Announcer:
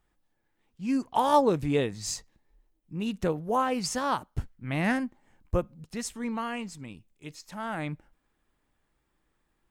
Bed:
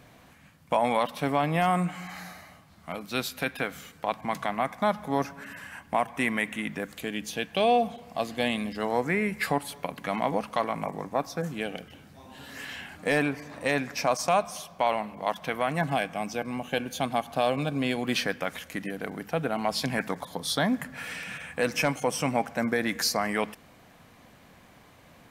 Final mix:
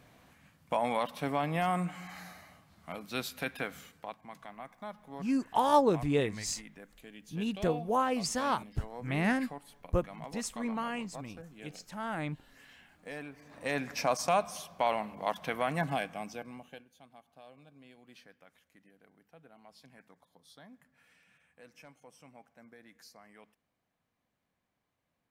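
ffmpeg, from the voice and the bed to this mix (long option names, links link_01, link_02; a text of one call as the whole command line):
ffmpeg -i stem1.wav -i stem2.wav -filter_complex "[0:a]adelay=4400,volume=-2.5dB[link_01];[1:a]volume=8dB,afade=type=out:start_time=3.79:duration=0.39:silence=0.251189,afade=type=in:start_time=13.34:duration=0.58:silence=0.199526,afade=type=out:start_time=15.75:duration=1.11:silence=0.0562341[link_02];[link_01][link_02]amix=inputs=2:normalize=0" out.wav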